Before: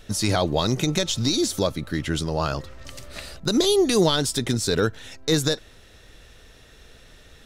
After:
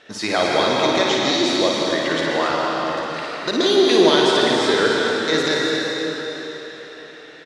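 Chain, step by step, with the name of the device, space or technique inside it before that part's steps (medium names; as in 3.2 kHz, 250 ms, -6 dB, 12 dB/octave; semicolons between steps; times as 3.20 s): station announcement (band-pass 350–4000 Hz; peaking EQ 1.8 kHz +5 dB 0.4 oct; loudspeakers at several distances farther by 19 m -5 dB, 94 m -11 dB; reverberation RT60 4.4 s, pre-delay 104 ms, DRR -2.5 dB); trim +3 dB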